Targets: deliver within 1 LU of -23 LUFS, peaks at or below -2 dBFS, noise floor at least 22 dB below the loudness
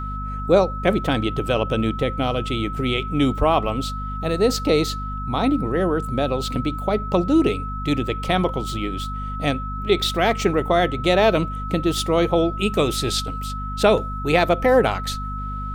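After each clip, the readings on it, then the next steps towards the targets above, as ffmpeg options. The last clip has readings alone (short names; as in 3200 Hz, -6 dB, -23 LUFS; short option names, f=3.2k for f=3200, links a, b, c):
hum 50 Hz; harmonics up to 250 Hz; hum level -27 dBFS; steady tone 1300 Hz; tone level -30 dBFS; loudness -21.5 LUFS; peak -4.5 dBFS; loudness target -23.0 LUFS
-> -af "bandreject=f=50:t=h:w=6,bandreject=f=100:t=h:w=6,bandreject=f=150:t=h:w=6,bandreject=f=200:t=h:w=6,bandreject=f=250:t=h:w=6"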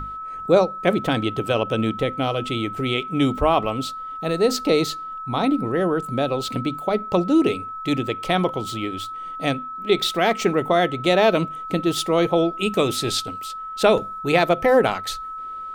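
hum none; steady tone 1300 Hz; tone level -30 dBFS
-> -af "bandreject=f=1.3k:w=30"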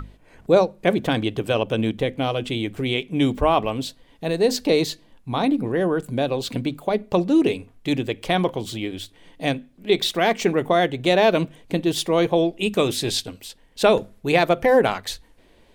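steady tone none; loudness -22.0 LUFS; peak -4.0 dBFS; loudness target -23.0 LUFS
-> -af "volume=-1dB"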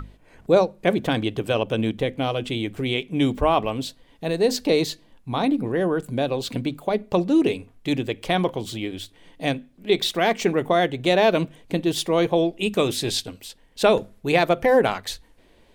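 loudness -23.0 LUFS; peak -5.0 dBFS; noise floor -55 dBFS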